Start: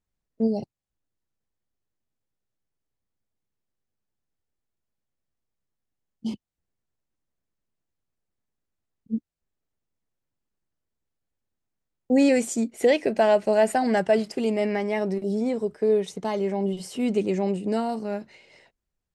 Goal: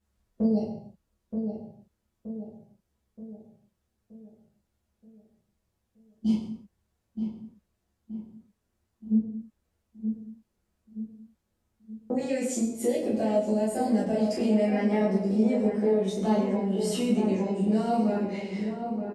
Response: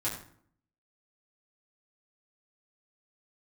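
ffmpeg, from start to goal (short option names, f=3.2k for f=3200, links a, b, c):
-filter_complex "[0:a]asettb=1/sr,asplit=3[a][b][c];[a]atrim=end=12.604[d];[b]atrim=start=12.6:end=14.17,asetpts=PTS-STARTPTS,afade=t=in:d=0.004:c=qsin,afade=t=out:st=1.566:d=0.004:c=qsin,equalizer=f=1.5k:w=0.43:g=-14[e];[c]atrim=start=14.166[f];[d][e]acrossfade=d=0.004:c1=hsin:c2=qsin[g];[g][f]acrossfade=d=0.004:c1=qsin:c2=hsin,acompressor=threshold=-35dB:ratio=6,asplit=2[h][i];[i]adelay=925,lowpass=f=1.3k:p=1,volume=-6.5dB,asplit=2[j][k];[k]adelay=925,lowpass=f=1.3k:p=1,volume=0.51,asplit=2[l][m];[m]adelay=925,lowpass=f=1.3k:p=1,volume=0.51,asplit=2[n][o];[o]adelay=925,lowpass=f=1.3k:p=1,volume=0.51,asplit=2[p][q];[q]adelay=925,lowpass=f=1.3k:p=1,volume=0.51,asplit=2[r][s];[s]adelay=925,lowpass=f=1.3k:p=1,volume=0.51[t];[h][j][l][n][p][r][t]amix=inputs=7:normalize=0[u];[1:a]atrim=start_sample=2205,afade=t=out:st=0.26:d=0.01,atrim=end_sample=11907,asetrate=29547,aresample=44100[v];[u][v]afir=irnorm=-1:irlink=0,volume=1.5dB"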